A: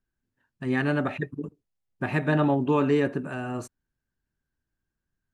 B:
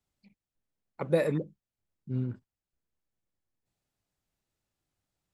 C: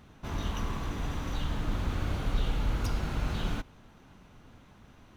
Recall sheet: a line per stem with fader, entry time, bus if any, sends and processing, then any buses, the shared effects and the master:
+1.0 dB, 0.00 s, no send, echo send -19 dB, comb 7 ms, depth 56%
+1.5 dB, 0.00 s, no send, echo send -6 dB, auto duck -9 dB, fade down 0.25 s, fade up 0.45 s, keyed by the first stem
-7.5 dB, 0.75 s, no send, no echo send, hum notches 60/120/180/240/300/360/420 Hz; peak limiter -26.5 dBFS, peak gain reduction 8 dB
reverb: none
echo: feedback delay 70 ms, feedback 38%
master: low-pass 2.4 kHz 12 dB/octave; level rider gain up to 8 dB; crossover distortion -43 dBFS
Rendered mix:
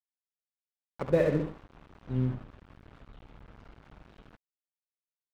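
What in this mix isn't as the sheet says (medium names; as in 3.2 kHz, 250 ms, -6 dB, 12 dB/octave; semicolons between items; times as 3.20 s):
stem A: muted; stem B +1.5 dB -> -7.0 dB; stem C -7.5 dB -> -17.5 dB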